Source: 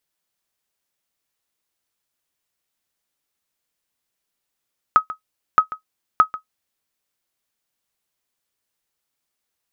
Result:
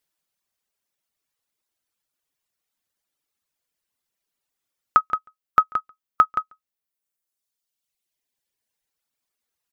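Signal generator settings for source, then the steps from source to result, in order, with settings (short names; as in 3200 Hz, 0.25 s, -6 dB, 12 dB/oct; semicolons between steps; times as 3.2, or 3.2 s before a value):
sonar ping 1270 Hz, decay 0.11 s, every 0.62 s, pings 3, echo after 0.14 s, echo -16.5 dB -3 dBFS
reverb removal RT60 2 s; on a send: echo 0.173 s -8.5 dB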